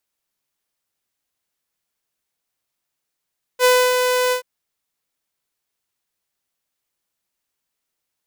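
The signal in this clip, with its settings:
note with an ADSR envelope saw 501 Hz, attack 55 ms, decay 281 ms, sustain −5.5 dB, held 0.73 s, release 101 ms −8 dBFS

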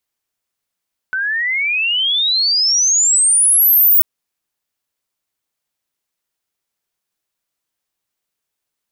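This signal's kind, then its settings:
glide logarithmic 1,500 Hz → 16,000 Hz −16.5 dBFS → −7 dBFS 2.89 s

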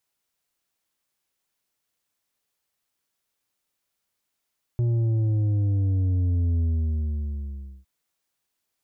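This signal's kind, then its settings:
bass drop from 120 Hz, over 3.06 s, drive 6.5 dB, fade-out 1.25 s, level −20.5 dB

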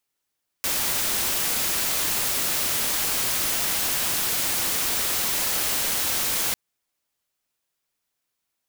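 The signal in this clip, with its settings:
noise white, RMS −24.5 dBFS 5.90 s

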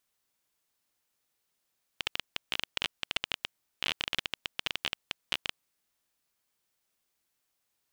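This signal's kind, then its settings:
Geiger counter clicks 17 per second −12 dBFS 3.58 s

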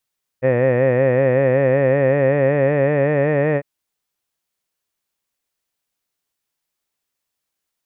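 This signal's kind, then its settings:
vowel by formant synthesis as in head, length 3.20 s, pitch 125 Hz, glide +3 semitones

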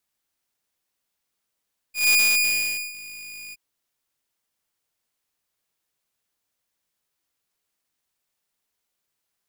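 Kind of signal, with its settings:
note with an ADSR envelope saw 2,450 Hz, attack 152 ms, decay 831 ms, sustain −22 dB, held 1.59 s, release 30 ms −12 dBFS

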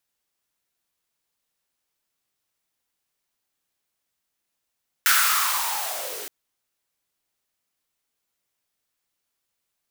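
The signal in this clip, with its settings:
filter sweep on noise white, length 1.22 s highpass, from 1,500 Hz, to 340 Hz, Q 5.8, linear, gain ramp −17 dB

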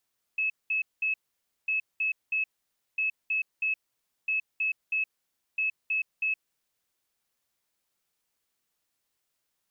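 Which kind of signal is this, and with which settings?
beeps in groups sine 2,590 Hz, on 0.12 s, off 0.20 s, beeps 3, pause 0.54 s, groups 5, −24.5 dBFS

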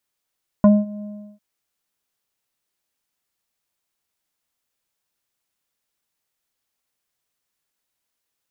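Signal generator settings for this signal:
subtractive voice square G#3 24 dB per octave, low-pass 560 Hz, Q 1.3, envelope 1 octave, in 0.05 s, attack 1.2 ms, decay 0.21 s, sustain −22 dB, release 0.36 s, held 0.39 s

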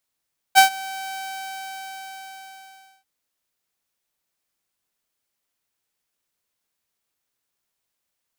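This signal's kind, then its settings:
note with an ADSR envelope saw 770 Hz, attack 33 ms, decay 109 ms, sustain −22.5 dB, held 0.58 s, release 1,910 ms −4.5 dBFS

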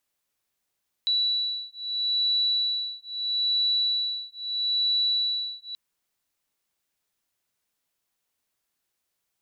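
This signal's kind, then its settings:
two tones that beat 3,940 Hz, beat 0.77 Hz, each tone −26.5 dBFS 4.68 s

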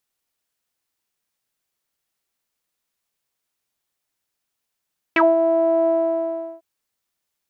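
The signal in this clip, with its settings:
subtractive voice saw E4 12 dB per octave, low-pass 710 Hz, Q 8.6, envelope 2 octaves, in 0.07 s, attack 3 ms, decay 0.19 s, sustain −6.5 dB, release 0.74 s, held 0.71 s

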